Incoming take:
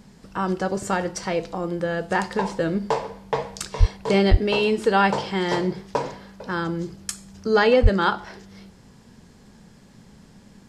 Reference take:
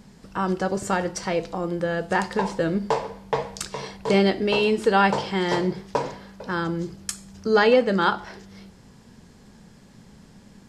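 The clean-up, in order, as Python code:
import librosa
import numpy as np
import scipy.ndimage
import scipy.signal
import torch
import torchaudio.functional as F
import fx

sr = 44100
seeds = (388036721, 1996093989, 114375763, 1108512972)

y = fx.highpass(x, sr, hz=140.0, slope=24, at=(3.79, 3.91), fade=0.02)
y = fx.highpass(y, sr, hz=140.0, slope=24, at=(4.3, 4.42), fade=0.02)
y = fx.highpass(y, sr, hz=140.0, slope=24, at=(7.82, 7.94), fade=0.02)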